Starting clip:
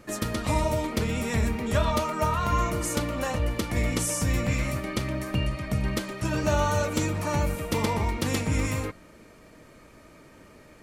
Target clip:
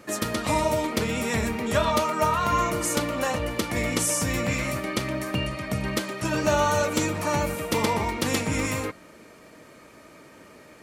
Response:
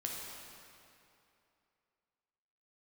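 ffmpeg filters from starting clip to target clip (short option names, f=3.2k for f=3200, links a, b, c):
-af "highpass=f=220:p=1,volume=4dB"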